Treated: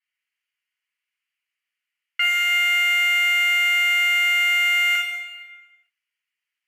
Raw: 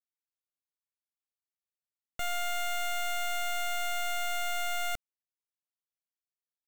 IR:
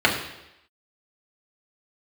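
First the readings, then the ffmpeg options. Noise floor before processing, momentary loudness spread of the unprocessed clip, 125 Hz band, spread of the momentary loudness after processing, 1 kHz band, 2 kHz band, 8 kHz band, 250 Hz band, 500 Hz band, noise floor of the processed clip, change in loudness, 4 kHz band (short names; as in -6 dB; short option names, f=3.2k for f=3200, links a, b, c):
under -85 dBFS, 4 LU, n/a, 9 LU, +5.5 dB, +20.0 dB, +4.5 dB, under -20 dB, -7.5 dB, under -85 dBFS, +16.0 dB, +15.0 dB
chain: -filter_complex "[0:a]highpass=f=2.3k:t=q:w=2.7[a];[1:a]atrim=start_sample=2205,asetrate=29106,aresample=44100[b];[a][b]afir=irnorm=-1:irlink=0,volume=-6.5dB"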